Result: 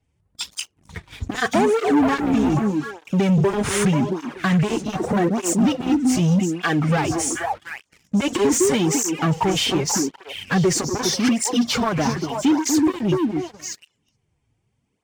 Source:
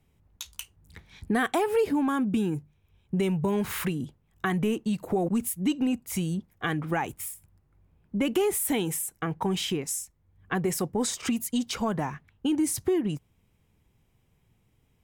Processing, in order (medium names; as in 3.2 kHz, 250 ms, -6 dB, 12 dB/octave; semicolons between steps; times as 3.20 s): knee-point frequency compression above 3.2 kHz 1.5:1; in parallel at -2 dB: peak limiter -25.5 dBFS, peak gain reduction 10 dB; on the sum: repeats whose band climbs or falls 243 ms, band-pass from 290 Hz, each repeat 1.4 oct, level -1 dB; waveshaping leveller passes 3; cancelling through-zero flanger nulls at 0.83 Hz, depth 5.8 ms